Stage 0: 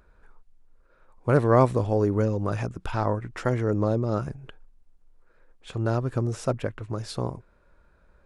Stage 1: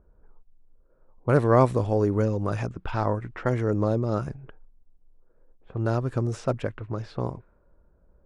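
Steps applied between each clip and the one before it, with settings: level-controlled noise filter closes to 600 Hz, open at -22.5 dBFS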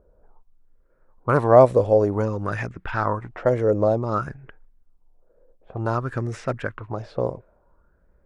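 sweeping bell 0.55 Hz 520–2000 Hz +13 dB; trim -1 dB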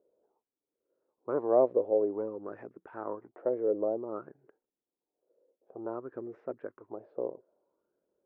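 ladder band-pass 440 Hz, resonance 40%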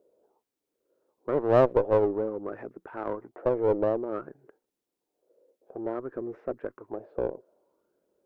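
single-diode clipper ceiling -27.5 dBFS; trim +6.5 dB

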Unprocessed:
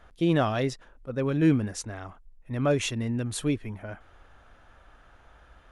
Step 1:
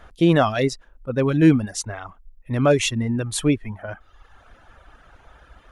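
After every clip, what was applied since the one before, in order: reverb removal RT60 0.99 s; trim +8 dB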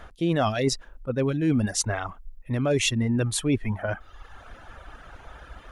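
dynamic bell 1.1 kHz, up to -5 dB, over -36 dBFS, Q 1.6; reverse; compression 6:1, threshold -26 dBFS, peak gain reduction 15.5 dB; reverse; trim +5 dB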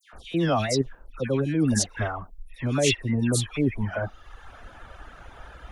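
phase dispersion lows, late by 133 ms, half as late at 2 kHz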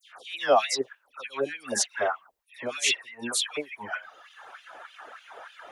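LFO high-pass sine 3.3 Hz 460–3200 Hz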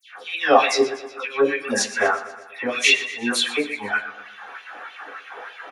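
feedback delay 121 ms, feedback 56%, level -15 dB; reverberation RT60 0.25 s, pre-delay 3 ms, DRR -1.5 dB

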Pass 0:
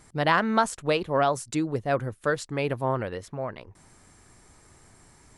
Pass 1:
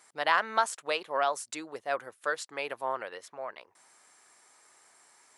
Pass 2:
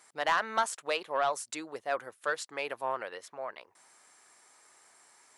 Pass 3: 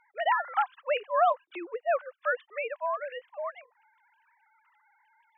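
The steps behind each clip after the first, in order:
high-pass 690 Hz 12 dB/octave; trim -2 dB
saturation -17.5 dBFS, distortion -16 dB
formants replaced by sine waves; trim +3.5 dB

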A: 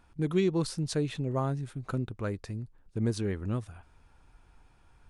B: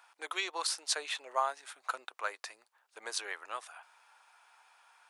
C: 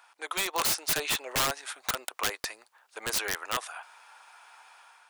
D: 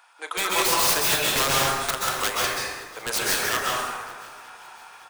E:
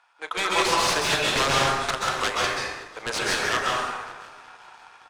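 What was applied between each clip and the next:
inverse Chebyshev high-pass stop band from 170 Hz, stop band 70 dB; trim +6.5 dB
level rider gain up to 6 dB; integer overflow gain 23.5 dB; trim +3.5 dB
doubling 36 ms -13.5 dB; shuffle delay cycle 927 ms, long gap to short 1.5:1, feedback 32%, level -22.5 dB; plate-style reverb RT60 1.4 s, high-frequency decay 0.6×, pre-delay 115 ms, DRR -4.5 dB; trim +2.5 dB
companding laws mixed up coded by A; distance through air 78 m; trim +2.5 dB

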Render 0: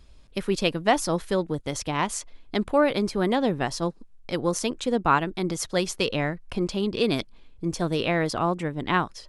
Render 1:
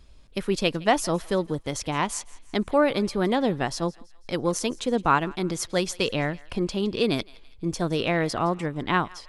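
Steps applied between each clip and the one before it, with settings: thinning echo 165 ms, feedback 48%, high-pass 980 Hz, level -21 dB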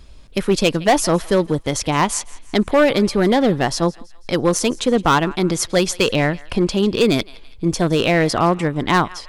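hard clipper -17.5 dBFS, distortion -13 dB; trim +9 dB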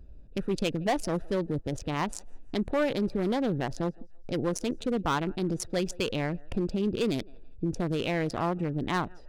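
local Wiener filter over 41 samples; peak limiter -16 dBFS, peak gain reduction 7.5 dB; trim -5 dB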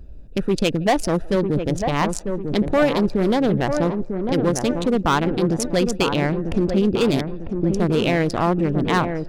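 feedback echo behind a low-pass 948 ms, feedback 42%, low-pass 1.5 kHz, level -6 dB; trim +9 dB

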